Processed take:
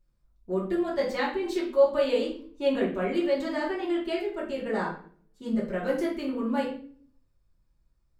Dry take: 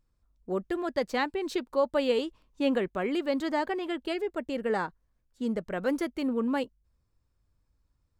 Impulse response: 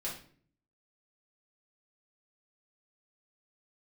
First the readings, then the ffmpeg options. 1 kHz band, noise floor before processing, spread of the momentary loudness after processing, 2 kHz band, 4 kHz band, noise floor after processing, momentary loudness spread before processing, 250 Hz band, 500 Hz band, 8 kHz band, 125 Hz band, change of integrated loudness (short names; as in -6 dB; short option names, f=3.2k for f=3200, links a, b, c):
-0.5 dB, -75 dBFS, 9 LU, +0.5 dB, 0.0 dB, -69 dBFS, 5 LU, +1.0 dB, +3.0 dB, n/a, +4.0 dB, +2.0 dB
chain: -filter_complex "[1:a]atrim=start_sample=2205[a];[0:a][a]afir=irnorm=-1:irlink=0,volume=-1dB"